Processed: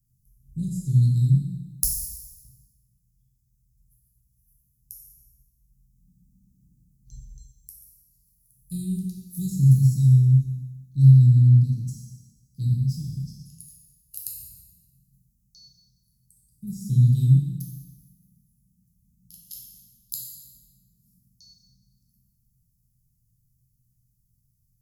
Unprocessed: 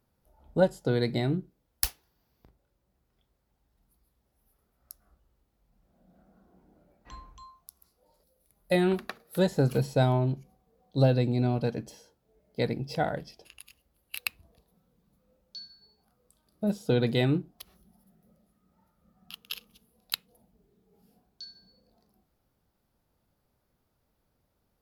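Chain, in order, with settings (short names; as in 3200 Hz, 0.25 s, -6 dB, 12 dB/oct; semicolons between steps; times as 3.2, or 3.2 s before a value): elliptic band-stop 150–6500 Hz, stop band 70 dB; bell 2300 Hz -7 dB 1.1 oct; plate-style reverb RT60 1.2 s, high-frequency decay 0.95×, DRR -2.5 dB; gain +4.5 dB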